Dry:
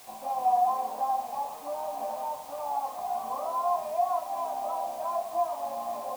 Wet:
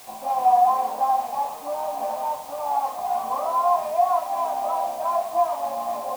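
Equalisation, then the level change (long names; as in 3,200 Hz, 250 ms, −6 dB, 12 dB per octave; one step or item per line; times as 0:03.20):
dynamic equaliser 1,600 Hz, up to +4 dB, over −37 dBFS, Q 0.78
+5.5 dB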